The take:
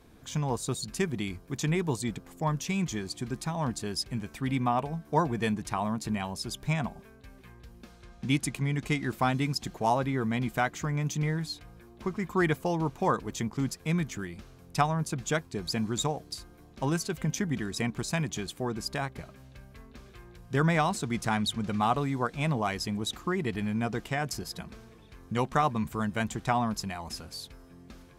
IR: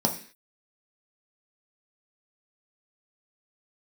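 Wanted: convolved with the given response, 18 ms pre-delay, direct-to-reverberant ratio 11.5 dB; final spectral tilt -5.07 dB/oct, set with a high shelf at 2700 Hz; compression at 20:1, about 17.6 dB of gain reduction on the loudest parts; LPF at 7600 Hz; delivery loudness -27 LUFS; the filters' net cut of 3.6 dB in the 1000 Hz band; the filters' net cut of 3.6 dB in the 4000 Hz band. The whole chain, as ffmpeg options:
-filter_complex "[0:a]lowpass=7.6k,equalizer=f=1k:t=o:g=-5,highshelf=f=2.7k:g=3.5,equalizer=f=4k:t=o:g=-7,acompressor=threshold=-39dB:ratio=20,asplit=2[a][b];[1:a]atrim=start_sample=2205,adelay=18[c];[b][c]afir=irnorm=-1:irlink=0,volume=-22dB[d];[a][d]amix=inputs=2:normalize=0,volume=17dB"

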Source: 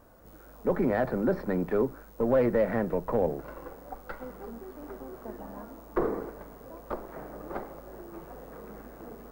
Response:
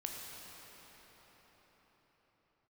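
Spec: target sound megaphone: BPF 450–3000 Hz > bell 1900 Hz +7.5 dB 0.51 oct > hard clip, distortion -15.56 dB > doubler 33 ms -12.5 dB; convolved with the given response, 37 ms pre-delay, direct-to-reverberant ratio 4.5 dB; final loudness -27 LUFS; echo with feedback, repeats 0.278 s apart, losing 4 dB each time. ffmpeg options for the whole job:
-filter_complex "[0:a]aecho=1:1:278|556|834|1112|1390|1668|1946|2224|2502:0.631|0.398|0.25|0.158|0.0994|0.0626|0.0394|0.0249|0.0157,asplit=2[a][b];[1:a]atrim=start_sample=2205,adelay=37[c];[b][c]afir=irnorm=-1:irlink=0,volume=-4.5dB[d];[a][d]amix=inputs=2:normalize=0,highpass=450,lowpass=3k,equalizer=f=1.9k:t=o:w=0.51:g=7.5,asoftclip=type=hard:threshold=-21dB,asplit=2[e][f];[f]adelay=33,volume=-12.5dB[g];[e][g]amix=inputs=2:normalize=0,volume=4dB"

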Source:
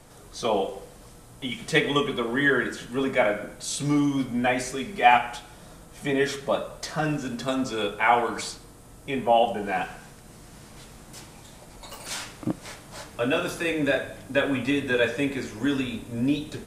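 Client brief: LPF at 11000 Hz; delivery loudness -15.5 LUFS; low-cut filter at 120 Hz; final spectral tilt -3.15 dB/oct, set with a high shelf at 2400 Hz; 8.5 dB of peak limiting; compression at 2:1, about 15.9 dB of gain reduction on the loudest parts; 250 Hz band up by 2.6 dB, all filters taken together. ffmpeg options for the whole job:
-af "highpass=120,lowpass=11k,equalizer=f=250:t=o:g=3,highshelf=f=2.4k:g=8.5,acompressor=threshold=-41dB:ratio=2,volume=22dB,alimiter=limit=-4.5dB:level=0:latency=1"

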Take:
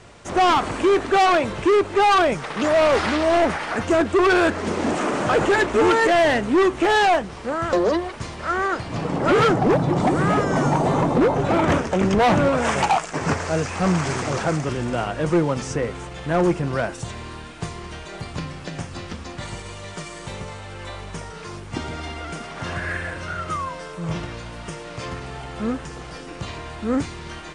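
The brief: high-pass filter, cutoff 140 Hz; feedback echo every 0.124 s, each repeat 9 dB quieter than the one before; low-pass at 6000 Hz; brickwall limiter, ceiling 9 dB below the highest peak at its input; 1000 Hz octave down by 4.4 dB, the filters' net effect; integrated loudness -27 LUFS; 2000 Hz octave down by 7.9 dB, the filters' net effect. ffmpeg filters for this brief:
-af "highpass=140,lowpass=6k,equalizer=f=1k:t=o:g=-4,equalizer=f=2k:t=o:g=-9,alimiter=limit=-19.5dB:level=0:latency=1,aecho=1:1:124|248|372|496:0.355|0.124|0.0435|0.0152,volume=1.5dB"

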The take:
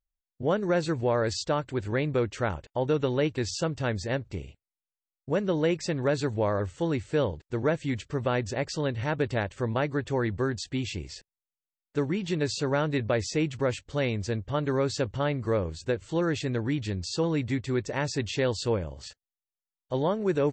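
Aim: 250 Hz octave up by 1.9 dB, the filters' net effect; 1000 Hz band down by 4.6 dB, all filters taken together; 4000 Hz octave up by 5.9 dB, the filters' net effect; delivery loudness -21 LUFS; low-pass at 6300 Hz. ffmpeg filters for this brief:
-af "lowpass=6.3k,equalizer=f=250:t=o:g=3,equalizer=f=1k:t=o:g=-7,equalizer=f=4k:t=o:g=8.5,volume=7dB"

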